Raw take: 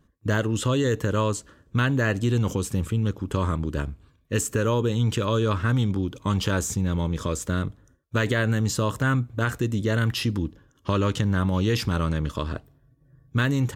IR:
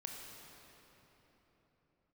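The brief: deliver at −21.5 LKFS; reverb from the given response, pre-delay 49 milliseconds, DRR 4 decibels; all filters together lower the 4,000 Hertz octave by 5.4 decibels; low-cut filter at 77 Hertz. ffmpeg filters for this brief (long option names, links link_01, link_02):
-filter_complex "[0:a]highpass=77,equalizer=frequency=4000:width_type=o:gain=-7.5,asplit=2[link_01][link_02];[1:a]atrim=start_sample=2205,adelay=49[link_03];[link_02][link_03]afir=irnorm=-1:irlink=0,volume=-2dB[link_04];[link_01][link_04]amix=inputs=2:normalize=0,volume=3dB"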